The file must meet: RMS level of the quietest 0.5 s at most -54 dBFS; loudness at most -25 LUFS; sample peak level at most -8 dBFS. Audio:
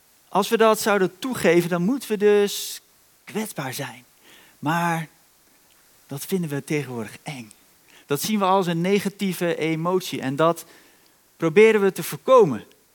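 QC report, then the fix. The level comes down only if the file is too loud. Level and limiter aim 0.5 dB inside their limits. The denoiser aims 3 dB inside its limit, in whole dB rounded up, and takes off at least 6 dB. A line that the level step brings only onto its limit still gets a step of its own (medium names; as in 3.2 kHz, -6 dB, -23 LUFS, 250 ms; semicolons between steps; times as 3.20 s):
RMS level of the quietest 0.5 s -57 dBFS: pass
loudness -21.5 LUFS: fail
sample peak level -3.0 dBFS: fail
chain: trim -4 dB; peak limiter -8.5 dBFS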